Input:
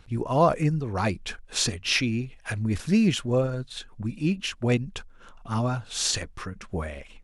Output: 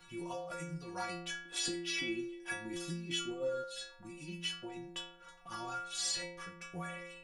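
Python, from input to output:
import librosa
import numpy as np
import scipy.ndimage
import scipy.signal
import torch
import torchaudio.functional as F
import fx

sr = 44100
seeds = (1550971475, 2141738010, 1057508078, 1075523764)

y = fx.over_compress(x, sr, threshold_db=-25.0, ratio=-0.5)
y = fx.low_shelf(y, sr, hz=370.0, db=-10.5)
y = fx.stiff_resonator(y, sr, f0_hz=170.0, decay_s=0.85, stiffness=0.008)
y = fx.small_body(y, sr, hz=(290.0, 3300.0), ring_ms=30, db=14, at=(1.45, 3.64))
y = fx.band_squash(y, sr, depth_pct=40)
y = y * 10.0 ** (8.0 / 20.0)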